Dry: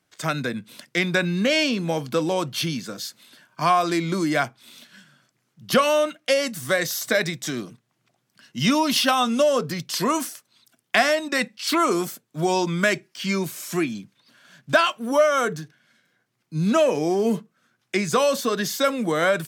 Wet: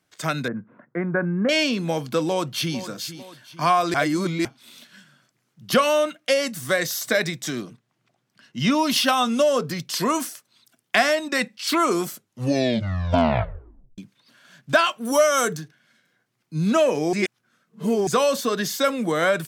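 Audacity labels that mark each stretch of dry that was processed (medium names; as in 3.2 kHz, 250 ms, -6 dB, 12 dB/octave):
0.480000	1.490000	steep low-pass 1.6 kHz
2.240000	2.770000	echo throw 450 ms, feedback 45%, level -13 dB
3.940000	4.450000	reverse
7.610000	8.780000	low-pass 7 kHz -> 3.5 kHz 6 dB/octave
12.060000	12.060000	tape stop 1.92 s
15.050000	15.570000	tone controls bass +1 dB, treble +11 dB
17.130000	18.070000	reverse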